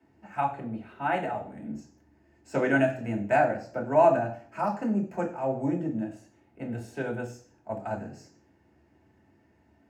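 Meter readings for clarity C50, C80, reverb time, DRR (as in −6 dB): 10.5 dB, 14.5 dB, 0.50 s, −1.5 dB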